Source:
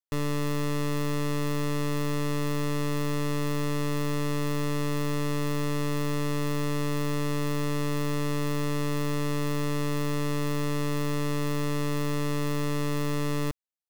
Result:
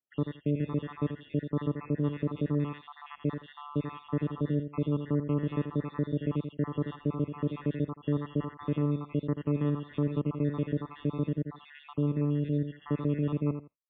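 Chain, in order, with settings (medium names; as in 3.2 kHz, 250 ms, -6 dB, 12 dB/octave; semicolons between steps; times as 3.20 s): random holes in the spectrogram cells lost 69%; reverb removal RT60 0.83 s; 6.95–7.44 s: low-pass 1.8 kHz 6 dB/octave; tilt shelf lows +9 dB, about 630 Hz; on a send: feedback delay 83 ms, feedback 18%, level -10.5 dB; 10.87–12.85 s: on the sum: dynamic bell 1.4 kHz, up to -5 dB, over -47 dBFS, Q 0.75; peak limiter -19.5 dBFS, peak gain reduction 3.5 dB; high-pass 160 Hz 12 dB/octave; trim +2 dB; MP3 16 kbps 8 kHz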